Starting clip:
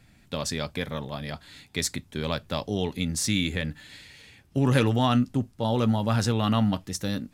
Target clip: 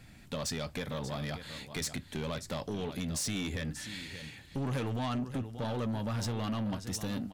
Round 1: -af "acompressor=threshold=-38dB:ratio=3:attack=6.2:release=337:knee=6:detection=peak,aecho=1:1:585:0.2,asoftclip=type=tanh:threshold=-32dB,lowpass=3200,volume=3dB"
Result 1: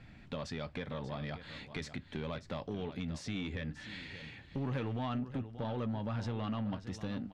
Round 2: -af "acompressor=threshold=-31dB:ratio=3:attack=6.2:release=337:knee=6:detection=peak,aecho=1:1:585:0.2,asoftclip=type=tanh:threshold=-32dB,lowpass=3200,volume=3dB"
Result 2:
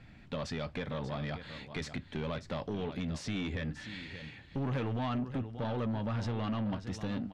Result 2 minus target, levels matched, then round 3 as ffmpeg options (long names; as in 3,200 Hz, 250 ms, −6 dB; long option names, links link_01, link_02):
4,000 Hz band −4.0 dB
-af "acompressor=threshold=-31dB:ratio=3:attack=6.2:release=337:knee=6:detection=peak,aecho=1:1:585:0.2,asoftclip=type=tanh:threshold=-32dB,volume=3dB"